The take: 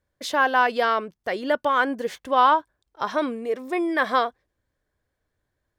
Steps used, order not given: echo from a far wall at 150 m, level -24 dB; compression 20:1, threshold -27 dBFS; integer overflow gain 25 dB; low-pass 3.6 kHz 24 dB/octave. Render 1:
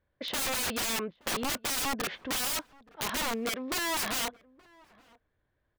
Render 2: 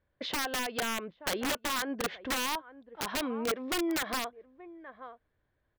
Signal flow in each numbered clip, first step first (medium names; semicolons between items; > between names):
low-pass > integer overflow > compression > echo from a far wall; echo from a far wall > compression > low-pass > integer overflow